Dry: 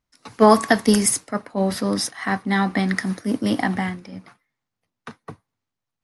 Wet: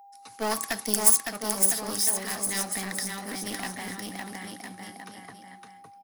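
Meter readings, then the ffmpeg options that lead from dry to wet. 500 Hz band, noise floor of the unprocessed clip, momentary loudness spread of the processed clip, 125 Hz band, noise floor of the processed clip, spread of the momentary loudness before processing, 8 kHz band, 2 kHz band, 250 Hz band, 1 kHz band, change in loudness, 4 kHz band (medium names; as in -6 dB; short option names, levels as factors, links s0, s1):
-14.0 dB, -84 dBFS, 21 LU, -15.5 dB, -51 dBFS, 13 LU, +3.0 dB, -8.5 dB, -16.0 dB, -12.0 dB, -4.5 dB, -3.5 dB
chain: -filter_complex "[0:a]asplit=2[s0][s1];[s1]aecho=0:1:560|1008|1366|1653|1882:0.631|0.398|0.251|0.158|0.1[s2];[s0][s2]amix=inputs=2:normalize=0,aeval=exprs='clip(val(0),-1,0.075)':c=same,lowshelf=f=160:g=10,aeval=exprs='val(0)+0.0158*sin(2*PI*800*n/s)':c=same,aemphasis=mode=production:type=riaa,volume=0.266"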